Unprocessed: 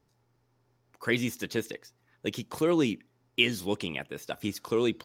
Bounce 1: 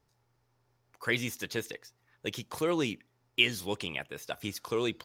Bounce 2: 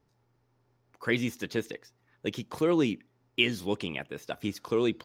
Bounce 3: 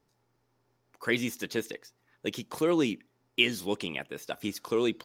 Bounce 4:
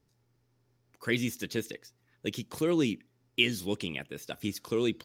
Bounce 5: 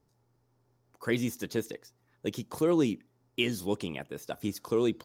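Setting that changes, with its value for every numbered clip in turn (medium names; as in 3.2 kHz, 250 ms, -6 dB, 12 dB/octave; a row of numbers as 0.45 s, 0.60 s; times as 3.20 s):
peaking EQ, frequency: 250 Hz, 12 kHz, 84 Hz, 890 Hz, 2.5 kHz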